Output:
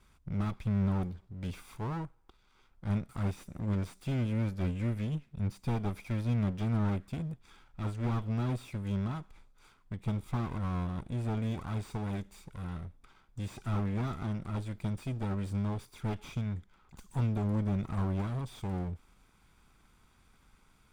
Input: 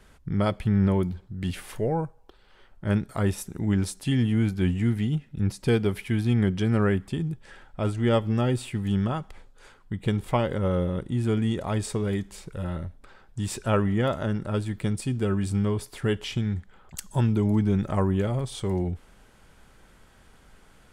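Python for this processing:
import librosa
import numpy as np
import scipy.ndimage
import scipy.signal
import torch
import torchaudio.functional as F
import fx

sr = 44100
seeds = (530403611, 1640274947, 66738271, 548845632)

y = fx.lower_of_two(x, sr, delay_ms=0.84)
y = fx.slew_limit(y, sr, full_power_hz=36.0)
y = F.gain(torch.from_numpy(y), -8.0).numpy()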